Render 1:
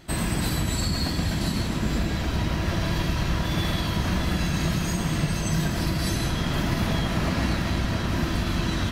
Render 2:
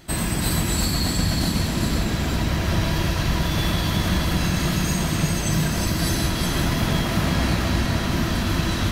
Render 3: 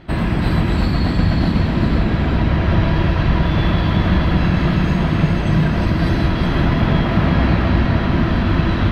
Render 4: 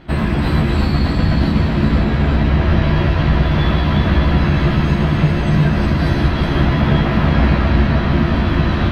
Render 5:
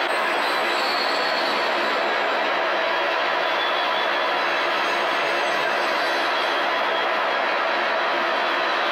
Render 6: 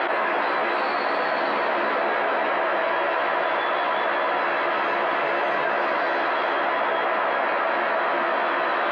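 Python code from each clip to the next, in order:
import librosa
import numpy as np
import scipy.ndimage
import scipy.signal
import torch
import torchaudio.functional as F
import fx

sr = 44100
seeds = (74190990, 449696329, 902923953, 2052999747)

y1 = fx.high_shelf(x, sr, hz=7200.0, db=6.5)
y1 = y1 + 10.0 ** (-3.5 / 20.0) * np.pad(y1, (int(367 * sr / 1000.0), 0))[:len(y1)]
y1 = y1 * 10.0 ** (1.5 / 20.0)
y2 = fx.air_absorb(y1, sr, metres=380.0)
y2 = y2 * 10.0 ** (7.0 / 20.0)
y3 = fx.doubler(y2, sr, ms=14.0, db=-4)
y4 = scipy.signal.sosfilt(scipy.signal.butter(4, 510.0, 'highpass', fs=sr, output='sos'), y3)
y4 = fx.env_flatten(y4, sr, amount_pct=100)
y5 = scipy.signal.sosfilt(scipy.signal.butter(2, 2000.0, 'lowpass', fs=sr, output='sos'), y4)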